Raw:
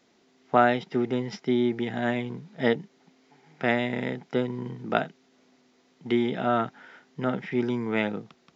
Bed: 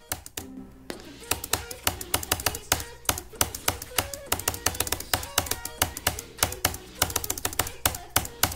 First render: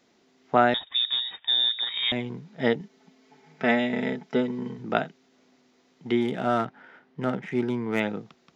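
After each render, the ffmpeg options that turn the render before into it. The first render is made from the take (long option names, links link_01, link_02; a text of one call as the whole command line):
ffmpeg -i in.wav -filter_complex "[0:a]asettb=1/sr,asplit=3[link_01][link_02][link_03];[link_01]atrim=end=0.744[link_04];[link_02]atrim=start=0.74:end=2.12,asetpts=PTS-STARTPTS,afade=type=in:duration=0.004:curve=qsin,afade=type=out:start_time=1.376:duration=0.004:curve=qsin,lowpass=frequency=3300:width_type=q:width=0.5098,lowpass=frequency=3300:width_type=q:width=0.6013,lowpass=frequency=3300:width_type=q:width=0.9,lowpass=frequency=3300:width_type=q:width=2.563,afreqshift=-3900[link_05];[link_03]atrim=start=2.116[link_06];[link_04][link_05]acrossfade=duration=0.004:curve1=hsin:curve2=qsin[link_07];[link_07][link_06]acrossfade=duration=0.004:curve1=qsin:curve2=hsin,asettb=1/sr,asplit=3[link_08][link_09][link_10];[link_08]atrim=end=2.804[link_11];[link_09]atrim=start=2.8:end=4.79,asetpts=PTS-STARTPTS,afade=type=in:duration=0.004:curve=qsin,afade=type=out:start_time=1.986:duration=0.004:curve=qsin,aecho=1:1:4.6:0.65,atrim=end_sample=87759[link_12];[link_10]atrim=start=4.786[link_13];[link_11][link_12]acrossfade=duration=0.004:curve1=hsin:curve2=qsin[link_14];[link_14][link_13]acrossfade=duration=0.004:curve1=qsin:curve2=hsin,asettb=1/sr,asplit=3[link_15][link_16][link_17];[link_15]atrim=end=6.214[link_18];[link_16]atrim=start=6.21:end=8,asetpts=PTS-STARTPTS,afade=type=in:duration=0.004:curve=qsin,afade=type=out:start_time=1.786:duration=0.004:curve=qsin,adynamicsmooth=sensitivity=7.5:basefreq=2800[link_19];[link_17]atrim=start=7.996[link_20];[link_18][link_19]acrossfade=duration=0.004:curve1=hsin:curve2=qsin[link_21];[link_21][link_20]acrossfade=duration=0.004:curve1=qsin:curve2=hsin" out.wav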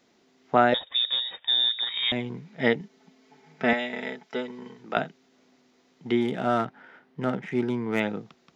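ffmpeg -i in.wav -filter_complex "[0:a]asettb=1/sr,asplit=3[link_01][link_02][link_03];[link_01]atrim=end=0.724[link_04];[link_02]atrim=start=0.72:end=1.45,asetpts=PTS-STARTPTS,afade=type=in:duration=0.004:curve=qsin,afade=type=out:start_time=0.726:duration=0.004:curve=qsin,equalizer=frequency=530:width_type=o:width=0.42:gain=13[link_05];[link_03]atrim=start=1.446[link_06];[link_04][link_05]acrossfade=duration=0.004:curve1=hsin:curve2=qsin[link_07];[link_07][link_06]acrossfade=duration=0.004:curve1=qsin:curve2=hsin,asettb=1/sr,asplit=3[link_08][link_09][link_10];[link_08]atrim=end=2.354[link_11];[link_09]atrim=start=2.35:end=2.81,asetpts=PTS-STARTPTS,afade=type=in:duration=0.004:curve=qsin,afade=type=out:start_time=0.456:duration=0.004:curve=qsin,equalizer=frequency=2200:width=2.7:gain=6.5[link_12];[link_10]atrim=start=2.806[link_13];[link_11][link_12]acrossfade=duration=0.004:curve1=hsin:curve2=qsin[link_14];[link_14][link_13]acrossfade=duration=0.004:curve1=qsin:curve2=hsin,asettb=1/sr,asplit=3[link_15][link_16][link_17];[link_15]atrim=end=3.734[link_18];[link_16]atrim=start=3.73:end=4.97,asetpts=PTS-STARTPTS,afade=type=in:duration=0.004:curve=qsin,afade=type=out:start_time=1.236:duration=0.004:curve=qsin,highpass=frequency=730:poles=1[link_19];[link_17]atrim=start=4.966[link_20];[link_18][link_19]acrossfade=duration=0.004:curve1=hsin:curve2=qsin[link_21];[link_21][link_20]acrossfade=duration=0.004:curve1=qsin:curve2=hsin" out.wav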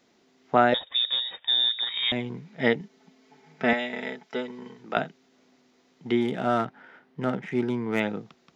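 ffmpeg -i in.wav -af anull out.wav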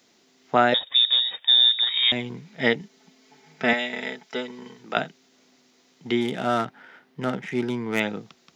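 ffmpeg -i in.wav -af "highpass=55,highshelf=frequency=2800:gain=10.5" out.wav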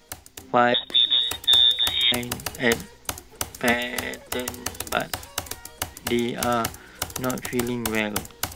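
ffmpeg -i in.wav -i bed.wav -filter_complex "[1:a]volume=-5dB[link_01];[0:a][link_01]amix=inputs=2:normalize=0" out.wav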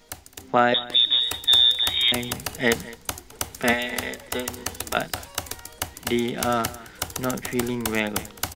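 ffmpeg -i in.wav -af "aecho=1:1:212:0.106" out.wav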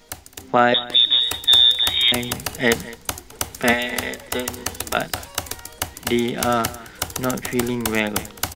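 ffmpeg -i in.wav -af "volume=3.5dB,alimiter=limit=-3dB:level=0:latency=1" out.wav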